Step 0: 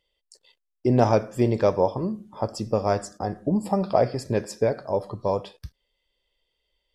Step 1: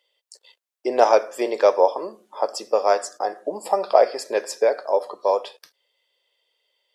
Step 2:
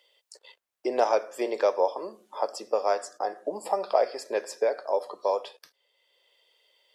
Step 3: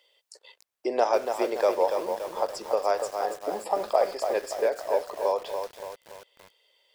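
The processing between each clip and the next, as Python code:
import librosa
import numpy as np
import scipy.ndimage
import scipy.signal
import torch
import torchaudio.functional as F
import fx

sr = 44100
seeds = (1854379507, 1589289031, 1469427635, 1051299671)

y1 = scipy.signal.sosfilt(scipy.signal.butter(4, 450.0, 'highpass', fs=sr, output='sos'), x)
y1 = y1 * librosa.db_to_amplitude(6.0)
y2 = fx.band_squash(y1, sr, depth_pct=40)
y2 = y2 * librosa.db_to_amplitude(-6.5)
y3 = fx.echo_crushed(y2, sr, ms=286, feedback_pct=55, bits=7, wet_db=-6)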